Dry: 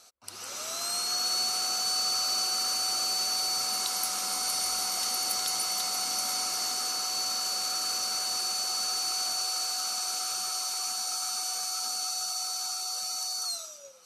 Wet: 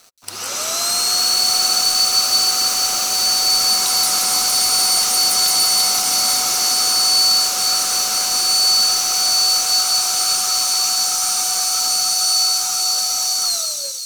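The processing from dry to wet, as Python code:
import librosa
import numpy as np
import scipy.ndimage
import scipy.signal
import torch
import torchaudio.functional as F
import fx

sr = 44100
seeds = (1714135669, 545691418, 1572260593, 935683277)

p1 = fx.leveller(x, sr, passes=3)
p2 = p1 + fx.echo_wet_highpass(p1, sr, ms=176, feedback_pct=73, hz=3500.0, wet_db=-4.0, dry=0)
y = p2 * 10.0 ** (2.5 / 20.0)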